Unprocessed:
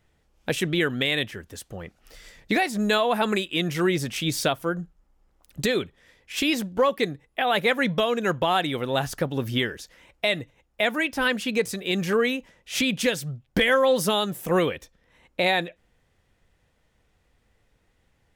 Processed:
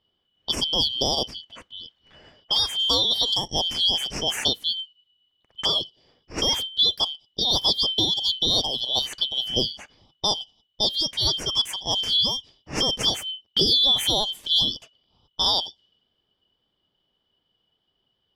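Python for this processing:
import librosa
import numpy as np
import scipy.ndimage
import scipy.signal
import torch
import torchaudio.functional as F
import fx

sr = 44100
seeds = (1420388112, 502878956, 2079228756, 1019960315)

y = fx.band_shuffle(x, sr, order='3412')
y = fx.env_lowpass(y, sr, base_hz=1900.0, full_db=-21.5)
y = fx.low_shelf(y, sr, hz=390.0, db=6.5)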